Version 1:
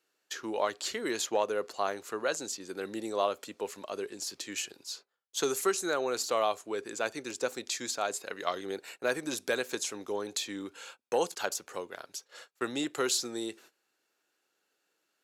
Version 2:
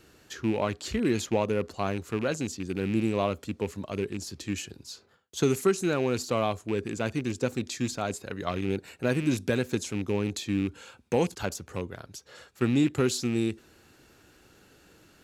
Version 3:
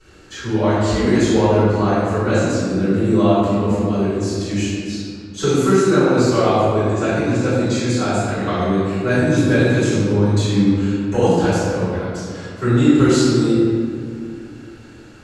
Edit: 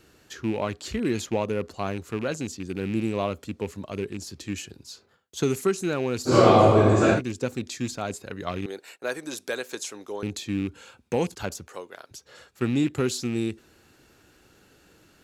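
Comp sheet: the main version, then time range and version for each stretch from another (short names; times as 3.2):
2
6.3–7.17 from 3, crossfade 0.10 s
8.66–10.23 from 1
11.68–12.11 from 1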